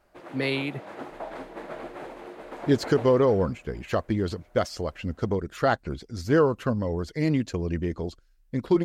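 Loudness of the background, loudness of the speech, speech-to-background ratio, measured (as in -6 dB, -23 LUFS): -40.5 LUFS, -26.5 LUFS, 14.0 dB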